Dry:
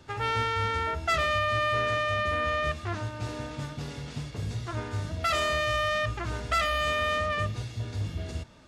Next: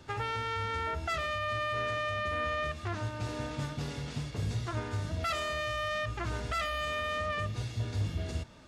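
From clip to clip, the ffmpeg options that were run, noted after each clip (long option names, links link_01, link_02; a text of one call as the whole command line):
ffmpeg -i in.wav -af "alimiter=limit=-23.5dB:level=0:latency=1:release=242" out.wav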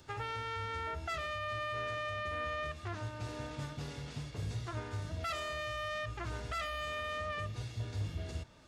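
ffmpeg -i in.wav -filter_complex "[0:a]equalizer=frequency=220:width_type=o:width=0.48:gain=-4,acrossover=split=3900[link_01][link_02];[link_02]acompressor=mode=upward:threshold=-60dB:ratio=2.5[link_03];[link_01][link_03]amix=inputs=2:normalize=0,volume=-5dB" out.wav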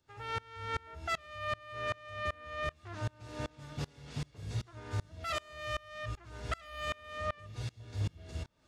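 ffmpeg -i in.wav -af "aeval=exprs='val(0)*pow(10,-28*if(lt(mod(-2.6*n/s,1),2*abs(-2.6)/1000),1-mod(-2.6*n/s,1)/(2*abs(-2.6)/1000),(mod(-2.6*n/s,1)-2*abs(-2.6)/1000)/(1-2*abs(-2.6)/1000))/20)':channel_layout=same,volume=7dB" out.wav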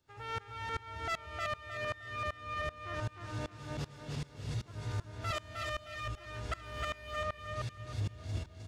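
ffmpeg -i in.wav -filter_complex "[0:a]asplit=2[link_01][link_02];[link_02]volume=32.5dB,asoftclip=hard,volume=-32.5dB,volume=-7.5dB[link_03];[link_01][link_03]amix=inputs=2:normalize=0,aecho=1:1:310|620|930|1240:0.668|0.214|0.0684|0.0219,volume=-4dB" out.wav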